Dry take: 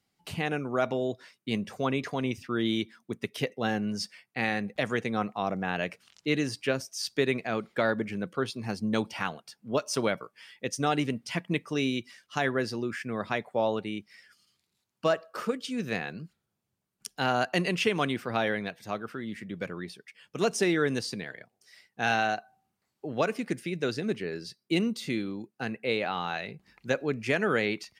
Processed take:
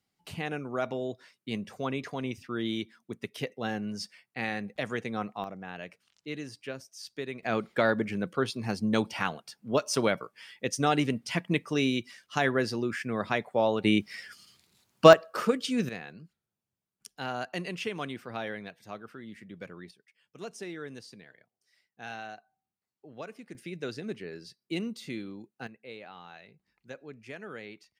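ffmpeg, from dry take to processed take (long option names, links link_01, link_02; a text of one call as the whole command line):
ffmpeg -i in.wav -af "asetnsamples=nb_out_samples=441:pad=0,asendcmd='5.44 volume volume -10.5dB;7.43 volume volume 1.5dB;13.84 volume volume 11.5dB;15.13 volume volume 4dB;15.89 volume volume -8dB;19.91 volume volume -14.5dB;23.55 volume volume -6.5dB;25.67 volume volume -16dB',volume=-4dB" out.wav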